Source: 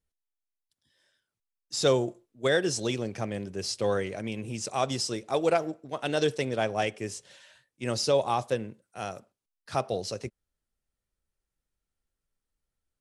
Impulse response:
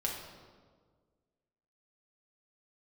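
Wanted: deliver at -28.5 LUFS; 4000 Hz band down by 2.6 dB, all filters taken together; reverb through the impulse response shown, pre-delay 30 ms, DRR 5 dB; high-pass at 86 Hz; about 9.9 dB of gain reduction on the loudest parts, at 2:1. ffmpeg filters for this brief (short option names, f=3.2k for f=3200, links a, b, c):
-filter_complex "[0:a]highpass=86,equalizer=f=4k:t=o:g=-3.5,acompressor=threshold=-38dB:ratio=2,asplit=2[a][b];[1:a]atrim=start_sample=2205,adelay=30[c];[b][c]afir=irnorm=-1:irlink=0,volume=-8.5dB[d];[a][d]amix=inputs=2:normalize=0,volume=8dB"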